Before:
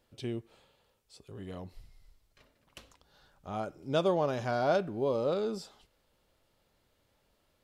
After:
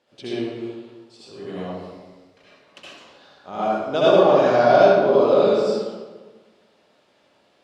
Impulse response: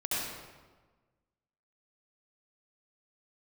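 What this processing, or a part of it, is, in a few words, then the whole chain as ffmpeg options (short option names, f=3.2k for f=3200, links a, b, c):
supermarket ceiling speaker: -filter_complex "[0:a]highpass=240,lowpass=5.7k[a];[1:a]atrim=start_sample=2205[b];[a][b]afir=irnorm=-1:irlink=0,volume=7.5dB"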